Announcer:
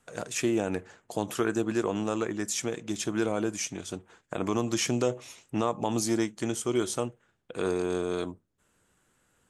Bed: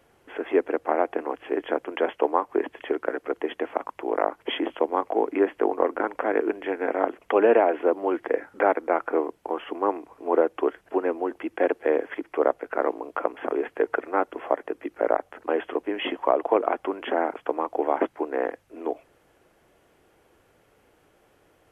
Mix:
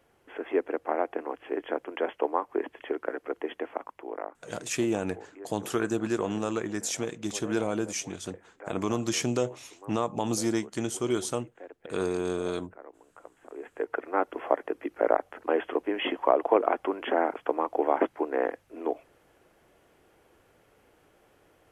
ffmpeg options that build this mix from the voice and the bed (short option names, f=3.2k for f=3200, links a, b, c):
-filter_complex "[0:a]adelay=4350,volume=-0.5dB[a];[1:a]volume=17.5dB,afade=t=out:st=3.56:d=0.97:silence=0.11885,afade=t=in:st=13.45:d=0.92:silence=0.0749894[b];[a][b]amix=inputs=2:normalize=0"